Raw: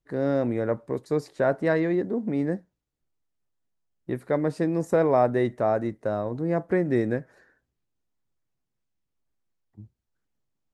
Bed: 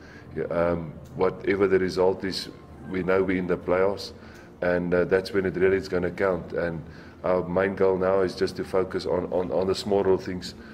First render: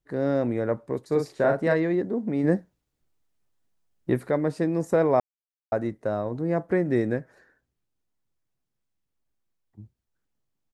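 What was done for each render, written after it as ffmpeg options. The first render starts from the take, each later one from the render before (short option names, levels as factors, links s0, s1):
-filter_complex "[0:a]asplit=3[s0][s1][s2];[s0]afade=t=out:st=1.11:d=0.02[s3];[s1]asplit=2[s4][s5];[s5]adelay=42,volume=0.631[s6];[s4][s6]amix=inputs=2:normalize=0,afade=t=in:st=1.11:d=0.02,afade=t=out:st=1.73:d=0.02[s7];[s2]afade=t=in:st=1.73:d=0.02[s8];[s3][s7][s8]amix=inputs=3:normalize=0,asplit=3[s9][s10][s11];[s9]afade=t=out:st=2.43:d=0.02[s12];[s10]acontrast=52,afade=t=in:st=2.43:d=0.02,afade=t=out:st=4.29:d=0.02[s13];[s11]afade=t=in:st=4.29:d=0.02[s14];[s12][s13][s14]amix=inputs=3:normalize=0,asplit=3[s15][s16][s17];[s15]atrim=end=5.2,asetpts=PTS-STARTPTS,afade=t=out:st=5.196:d=0.004:c=hsin[s18];[s16]atrim=start=5.2:end=5.72,asetpts=PTS-STARTPTS,volume=0[s19];[s17]atrim=start=5.72,asetpts=PTS-STARTPTS,afade=t=in:d=0.004:c=hsin[s20];[s18][s19][s20]concat=n=3:v=0:a=1"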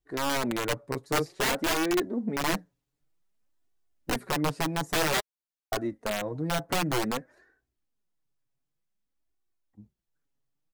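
-af "aeval=exprs='(mod(7.5*val(0)+1,2)-1)/7.5':c=same,flanger=delay=2.6:depth=4.7:regen=14:speed=0.53:shape=sinusoidal"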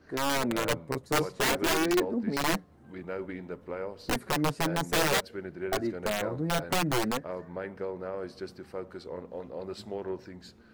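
-filter_complex "[1:a]volume=0.2[s0];[0:a][s0]amix=inputs=2:normalize=0"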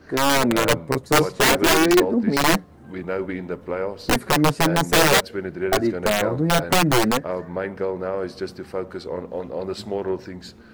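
-af "volume=3.16"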